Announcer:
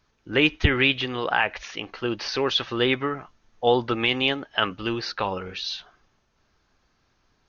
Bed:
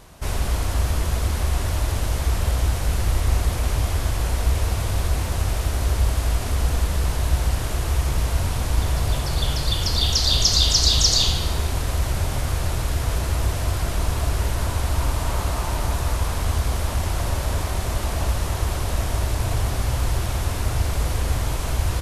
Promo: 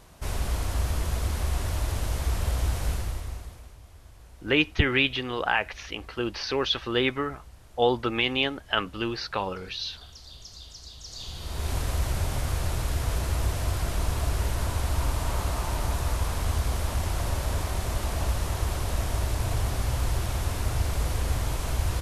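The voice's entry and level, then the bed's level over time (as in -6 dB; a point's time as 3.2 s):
4.15 s, -2.5 dB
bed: 2.89 s -5.5 dB
3.78 s -27.5 dB
11 s -27.5 dB
11.71 s -4.5 dB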